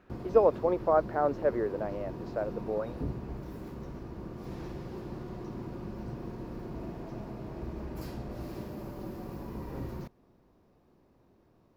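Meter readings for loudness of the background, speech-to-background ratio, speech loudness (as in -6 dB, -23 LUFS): -41.0 LUFS, 11.5 dB, -29.5 LUFS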